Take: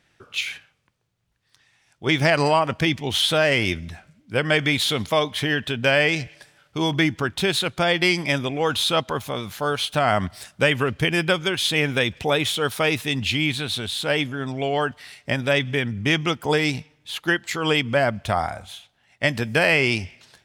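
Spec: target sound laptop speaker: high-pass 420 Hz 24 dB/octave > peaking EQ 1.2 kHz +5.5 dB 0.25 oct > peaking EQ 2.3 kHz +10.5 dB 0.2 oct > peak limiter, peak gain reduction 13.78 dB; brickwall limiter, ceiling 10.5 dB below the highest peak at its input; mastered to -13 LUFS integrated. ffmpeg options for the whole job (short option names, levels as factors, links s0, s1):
-af "alimiter=limit=0.178:level=0:latency=1,highpass=f=420:w=0.5412,highpass=f=420:w=1.3066,equalizer=f=1200:t=o:w=0.25:g=5.5,equalizer=f=2300:t=o:w=0.2:g=10.5,volume=10,alimiter=limit=0.668:level=0:latency=1"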